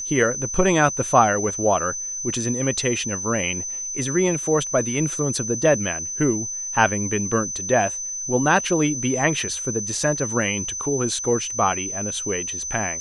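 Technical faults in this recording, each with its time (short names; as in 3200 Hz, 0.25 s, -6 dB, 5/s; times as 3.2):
tone 6100 Hz -27 dBFS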